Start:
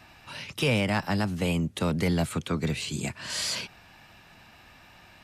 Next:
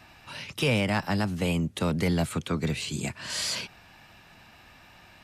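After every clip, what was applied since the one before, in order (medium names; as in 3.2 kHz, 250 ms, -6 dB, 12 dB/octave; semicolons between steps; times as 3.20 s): no audible change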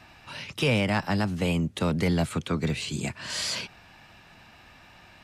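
treble shelf 12 kHz -10 dB; trim +1 dB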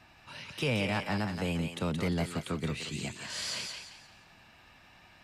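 thinning echo 174 ms, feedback 36%, high-pass 700 Hz, level -4 dB; trim -6.5 dB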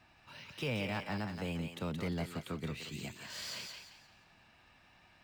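decimation joined by straight lines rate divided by 2×; trim -6 dB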